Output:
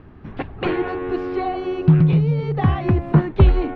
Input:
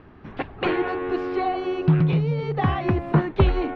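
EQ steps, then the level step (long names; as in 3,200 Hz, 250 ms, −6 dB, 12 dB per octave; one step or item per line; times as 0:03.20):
low-shelf EQ 250 Hz +8.5 dB
−1.0 dB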